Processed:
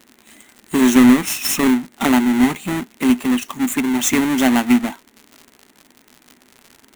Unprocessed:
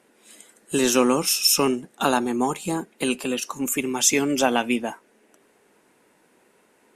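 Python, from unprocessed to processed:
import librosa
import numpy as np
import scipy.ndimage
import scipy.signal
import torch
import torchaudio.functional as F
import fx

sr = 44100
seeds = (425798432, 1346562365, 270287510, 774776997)

y = fx.halfwave_hold(x, sr)
y = fx.graphic_eq_31(y, sr, hz=(250, 500, 2000, 5000), db=(10, -10, 6, -10))
y = fx.dmg_crackle(y, sr, seeds[0], per_s=110.0, level_db=-27.0)
y = y * 10.0 ** (-2.0 / 20.0)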